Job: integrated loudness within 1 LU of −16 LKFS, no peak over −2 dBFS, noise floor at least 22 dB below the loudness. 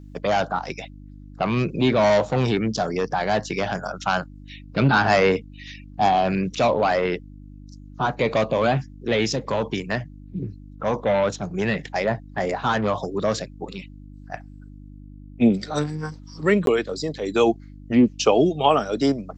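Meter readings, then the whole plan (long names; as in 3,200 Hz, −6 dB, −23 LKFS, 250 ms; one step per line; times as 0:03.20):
number of dropouts 1; longest dropout 12 ms; mains hum 50 Hz; hum harmonics up to 300 Hz; level of the hum −40 dBFS; integrated loudness −22.5 LKFS; sample peak −3.5 dBFS; target loudness −16.0 LKFS
→ repair the gap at 0:16.66, 12 ms
hum removal 50 Hz, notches 6
level +6.5 dB
brickwall limiter −2 dBFS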